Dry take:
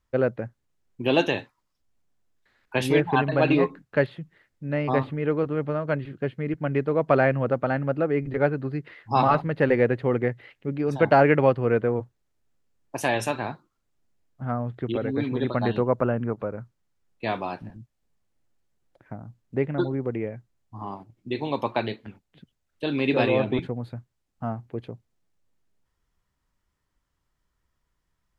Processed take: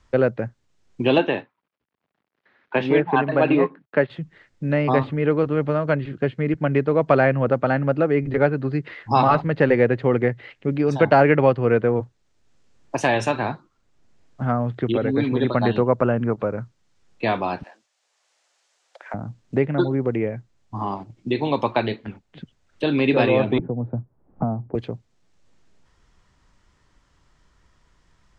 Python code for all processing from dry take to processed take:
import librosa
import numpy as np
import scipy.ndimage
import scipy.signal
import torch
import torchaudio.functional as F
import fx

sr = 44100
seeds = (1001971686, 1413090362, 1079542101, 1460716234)

y = fx.chain(x, sr, fx.law_mismatch(coded='A'),
    fx.bandpass_edges(low_hz=180.0, high_hz=3000.0),
    fx.air_absorb(metres=110.0), at=(1.18, 4.1))
y = fx.chain(y, sr, fx.highpass(hz=570.0, slope=24),
    fx.high_shelf(hz=2700.0, db=8.0), at=(17.63, 19.14))
y = fx.chain(y, sr, fx.bessel_lowpass(hz=680.0, order=4),
    fx.band_squash(depth_pct=100), at=(23.58, 24.75))
y = scipy.signal.sosfilt(scipy.signal.butter(4, 7600.0, 'lowpass', fs=sr, output='sos'), y)
y = fx.band_squash(y, sr, depth_pct=40)
y = F.gain(torch.from_numpy(y), 4.5).numpy()